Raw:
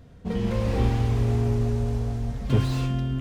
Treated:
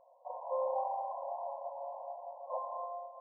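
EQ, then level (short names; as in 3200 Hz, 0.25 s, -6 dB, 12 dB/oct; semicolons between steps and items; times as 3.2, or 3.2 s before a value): brick-wall FIR band-pass 510–1100 Hz; +1.5 dB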